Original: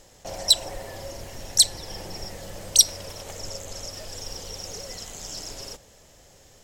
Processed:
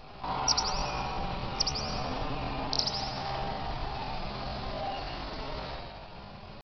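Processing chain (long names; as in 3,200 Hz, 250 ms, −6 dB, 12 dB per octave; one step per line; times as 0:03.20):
in parallel at −2 dB: downward compressor 16 to 1, threshold −46 dBFS, peak gain reduction 36.5 dB
on the sum: downsampling to 8,000 Hz
spring reverb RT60 1.3 s, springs 48/55 ms, chirp 55 ms, DRR −2.5 dB
pitch shifter +6 semitones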